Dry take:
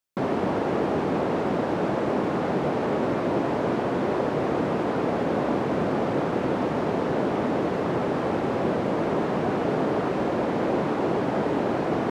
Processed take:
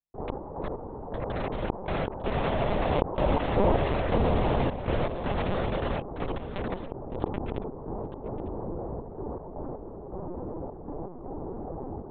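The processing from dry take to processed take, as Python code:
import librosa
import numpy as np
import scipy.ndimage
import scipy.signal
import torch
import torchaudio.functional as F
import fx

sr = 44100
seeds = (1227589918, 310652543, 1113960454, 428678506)

p1 = fx.doppler_pass(x, sr, speed_mps=39, closest_m=8.9, pass_at_s=3.74)
p2 = fx.dynamic_eq(p1, sr, hz=310.0, q=1.8, threshold_db=-46.0, ratio=4.0, max_db=-5)
p3 = scipy.signal.sosfilt(scipy.signal.cheby1(3, 1.0, [110.0, 970.0], 'bandpass', fs=sr, output='sos'), p2)
p4 = fx.doubler(p3, sr, ms=24.0, db=-8.0)
p5 = fx.step_gate(p4, sr, bpm=80, pattern='.x.x..xxx.x.xxxx', floor_db=-12.0, edge_ms=4.5)
p6 = fx.quant_companded(p5, sr, bits=2)
p7 = p5 + F.gain(torch.from_numpy(p6), -7.0).numpy()
p8 = p7 + 10.0 ** (-20.0 / 20.0) * np.pad(p7, (int(907 * sr / 1000.0), 0))[:len(p7)]
p9 = fx.lpc_vocoder(p8, sr, seeds[0], excitation='pitch_kept', order=10)
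p10 = fx.env_flatten(p9, sr, amount_pct=50)
y = F.gain(torch.from_numpy(p10), 2.5).numpy()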